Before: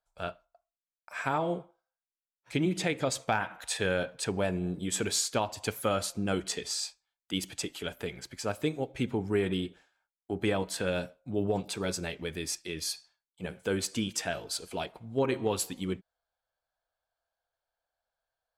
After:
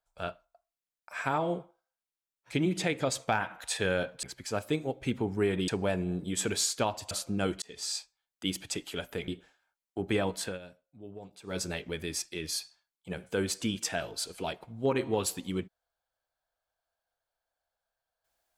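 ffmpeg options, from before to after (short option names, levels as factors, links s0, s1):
-filter_complex "[0:a]asplit=8[s0][s1][s2][s3][s4][s5][s6][s7];[s0]atrim=end=4.232[s8];[s1]atrim=start=8.158:end=9.612[s9];[s2]atrim=start=4.228:end=5.662[s10];[s3]atrim=start=5.988:end=6.5,asetpts=PTS-STARTPTS,afade=t=out:st=0.508:d=0.004:c=hsin[s11];[s4]atrim=start=6.5:end=8.162,asetpts=PTS-STARTPTS,afade=t=in:d=0.3[s12];[s5]atrim=start=9.608:end=10.92,asetpts=PTS-STARTPTS,afade=t=out:st=1.142:d=0.17:silence=0.158489[s13];[s6]atrim=start=10.92:end=11.76,asetpts=PTS-STARTPTS,volume=0.158[s14];[s7]atrim=start=11.76,asetpts=PTS-STARTPTS,afade=t=in:d=0.17:silence=0.158489[s15];[s8][s9]acrossfade=d=0.004:c1=hsin:c2=hsin[s16];[s16][s10]acrossfade=d=0.004:c1=hsin:c2=hsin[s17];[s11][s12]concat=n=2:v=0:a=1[s18];[s17][s18]acrossfade=d=0.004:c1=hsin:c2=hsin[s19];[s13][s14][s15]concat=n=3:v=0:a=1[s20];[s19][s20]acrossfade=d=0.004:c1=hsin:c2=hsin"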